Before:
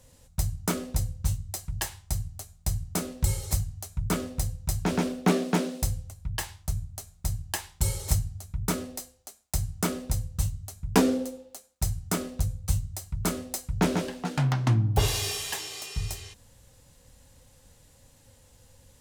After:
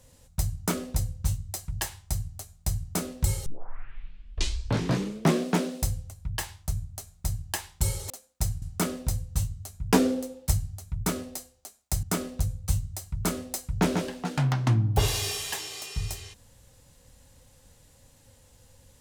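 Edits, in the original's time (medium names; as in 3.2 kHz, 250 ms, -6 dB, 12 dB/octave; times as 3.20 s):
3.46 s: tape start 2.01 s
8.10–9.65 s: swap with 11.51–12.03 s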